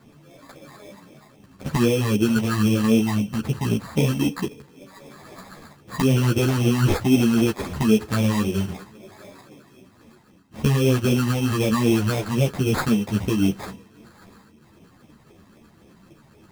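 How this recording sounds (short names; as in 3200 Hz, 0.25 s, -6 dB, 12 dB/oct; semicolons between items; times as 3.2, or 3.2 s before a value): phasing stages 12, 3.8 Hz, lowest notch 480–1400 Hz; aliases and images of a low sample rate 2900 Hz, jitter 0%; a shimmering, thickened sound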